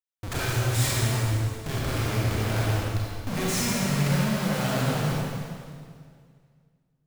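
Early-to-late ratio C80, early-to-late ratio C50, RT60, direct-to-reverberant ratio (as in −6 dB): −1.5 dB, −4.0 dB, 2.0 s, −5.5 dB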